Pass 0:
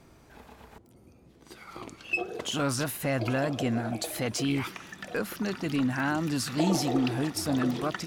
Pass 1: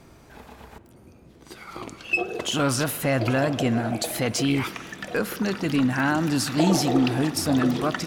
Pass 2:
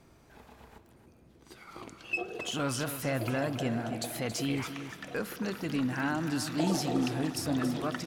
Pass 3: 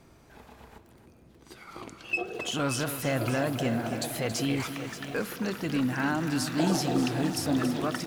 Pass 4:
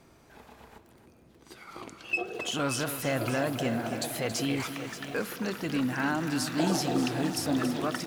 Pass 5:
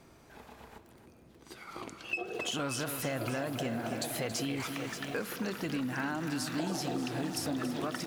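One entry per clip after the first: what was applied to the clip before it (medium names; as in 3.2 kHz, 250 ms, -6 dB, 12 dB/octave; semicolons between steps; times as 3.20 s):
spring tank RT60 3.2 s, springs 45 ms, chirp 40 ms, DRR 14.5 dB; trim +5.5 dB
feedback delay 277 ms, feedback 27%, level -10.5 dB; trim -9 dB
bit-crushed delay 581 ms, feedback 35%, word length 8-bit, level -10.5 dB; trim +3 dB
bass shelf 150 Hz -5.5 dB
compression, threshold -31 dBFS, peak gain reduction 8.5 dB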